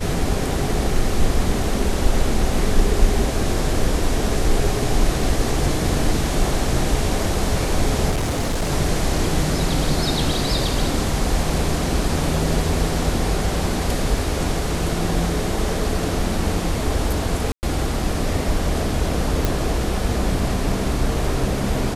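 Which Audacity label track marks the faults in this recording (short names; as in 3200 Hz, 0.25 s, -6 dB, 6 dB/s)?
8.100000	8.710000	clipped -17.5 dBFS
17.520000	17.630000	gap 0.109 s
19.450000	19.450000	pop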